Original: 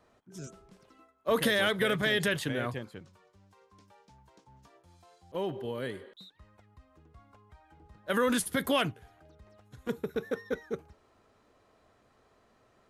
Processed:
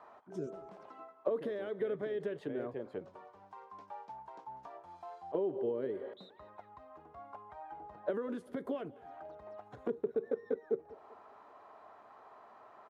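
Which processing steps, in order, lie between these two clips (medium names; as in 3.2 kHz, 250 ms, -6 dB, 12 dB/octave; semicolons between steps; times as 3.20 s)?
band-stop 510 Hz, Q 12; compression 16:1, threshold -43 dBFS, peak gain reduction 21.5 dB; auto-wah 410–1000 Hz, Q 2.3, down, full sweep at -43 dBFS; on a send: feedback delay 197 ms, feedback 44%, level -21 dB; on the sum: trim +16 dB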